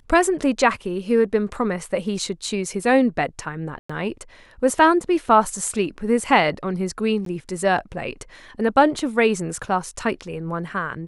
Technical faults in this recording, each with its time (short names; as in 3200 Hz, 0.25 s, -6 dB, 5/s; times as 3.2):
3.79–3.9 gap 0.105 s
7.25–7.26 gap 13 ms